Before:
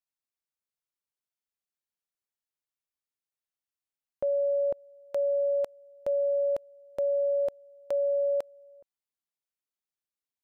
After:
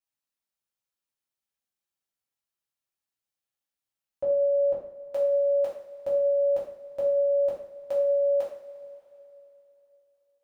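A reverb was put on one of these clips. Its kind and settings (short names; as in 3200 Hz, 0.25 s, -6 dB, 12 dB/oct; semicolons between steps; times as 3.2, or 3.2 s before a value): two-slope reverb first 0.5 s, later 3.3 s, from -18 dB, DRR -7 dB; gain -5.5 dB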